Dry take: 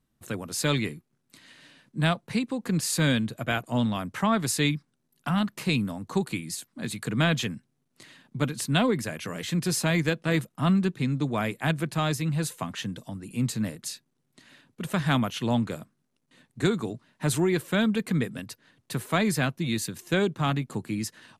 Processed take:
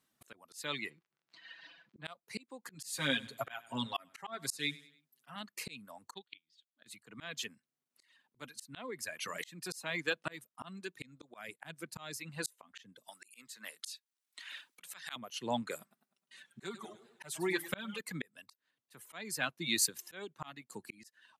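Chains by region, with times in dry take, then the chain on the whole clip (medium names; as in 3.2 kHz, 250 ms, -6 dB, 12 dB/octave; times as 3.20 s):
0.89–2.04 s: comb 6 ms, depth 76% + crackle 56 per s -46 dBFS + distance through air 180 m
2.74–5.36 s: comb 7.4 ms, depth 75% + feedback delay 98 ms, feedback 34%, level -13 dB
6.14–6.86 s: resonant low-pass 3.4 kHz, resonance Q 7.2 + upward expansion 2.5:1, over -35 dBFS
11.48–12.17 s: gate -41 dBFS, range -12 dB + bass shelf 190 Hz +6.5 dB
13.08–15.16 s: high-pass 170 Hz 24 dB/octave + tilt shelf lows -10 dB, about 830 Hz
15.80–18.01 s: comb 5.2 ms, depth 76% + modulated delay 103 ms, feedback 44%, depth 160 cents, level -11.5 dB
whole clip: high-pass 930 Hz 6 dB/octave; reverb removal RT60 1.6 s; slow attack 726 ms; trim +4.5 dB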